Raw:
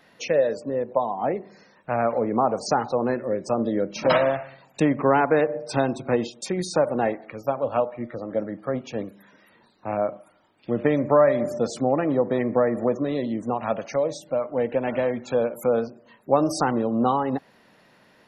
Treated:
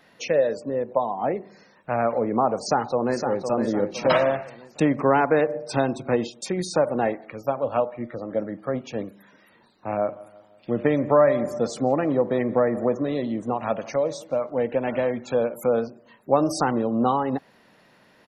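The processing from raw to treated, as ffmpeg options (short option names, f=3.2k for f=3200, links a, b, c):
-filter_complex "[0:a]asplit=2[a][b];[b]afade=t=in:st=2.59:d=0.01,afade=t=out:st=3.47:d=0.01,aecho=0:1:510|1020|1530|2040|2550:0.446684|0.178673|0.0714694|0.0285877|0.0114351[c];[a][c]amix=inputs=2:normalize=0,asettb=1/sr,asplit=3[d][e][f];[d]atrim=end=9.894[g];[e]atrim=start=9.89:end=14.5,asetpts=PTS-STARTPTS,afade=t=in:d=0.004:c=qsin,afade=t=out:st=4.606:d=0.004:c=qsin,asplit=2[h][i];[i]adelay=172,lowpass=f=3.2k:p=1,volume=-20.5dB,asplit=2[j][k];[k]adelay=172,lowpass=f=3.2k:p=1,volume=0.53,asplit=2[l][m];[m]adelay=172,lowpass=f=3.2k:p=1,volume=0.53,asplit=2[n][o];[o]adelay=172,lowpass=f=3.2k:p=1,volume=0.53[p];[h][j][l][n][p]amix=inputs=5:normalize=0,atrim=end_sample=203301[q];[f]atrim=start=14.496[r];[g][q]acrossfade=d=0.004:c1=hsin:c2=qsin[s];[s][r]acrossfade=d=0.004:c1=qsin:c2=hsin"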